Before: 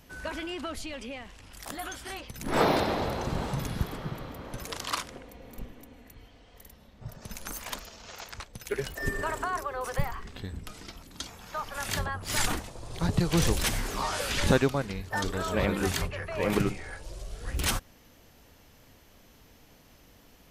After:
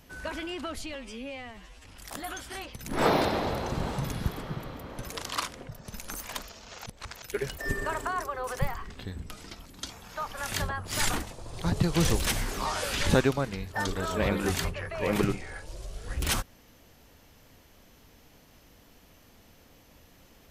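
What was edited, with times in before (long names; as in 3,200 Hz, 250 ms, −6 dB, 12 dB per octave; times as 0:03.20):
0:00.95–0:01.40: time-stretch 2×
0:05.24–0:07.06: remove
0:08.23–0:08.59: reverse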